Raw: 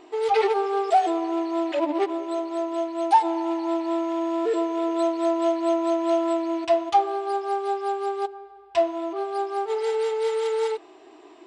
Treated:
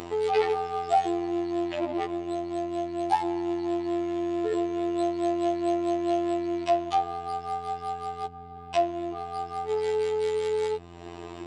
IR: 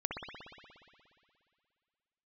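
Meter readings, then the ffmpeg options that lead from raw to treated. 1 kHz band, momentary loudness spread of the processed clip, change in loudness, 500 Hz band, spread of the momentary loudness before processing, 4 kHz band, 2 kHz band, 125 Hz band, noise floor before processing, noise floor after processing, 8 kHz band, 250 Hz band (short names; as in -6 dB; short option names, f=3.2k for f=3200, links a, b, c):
-4.5 dB, 8 LU, -4.0 dB, -4.0 dB, 7 LU, -3.0 dB, -3.5 dB, n/a, -49 dBFS, -43 dBFS, -3.0 dB, -2.5 dB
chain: -af "acompressor=mode=upward:threshold=-25dB:ratio=2.5,aeval=exprs='val(0)+0.00891*(sin(2*PI*60*n/s)+sin(2*PI*2*60*n/s)/2+sin(2*PI*3*60*n/s)/3+sin(2*PI*4*60*n/s)/4+sin(2*PI*5*60*n/s)/5)':c=same,afftfilt=real='hypot(re,im)*cos(PI*b)':imag='0':win_size=2048:overlap=0.75"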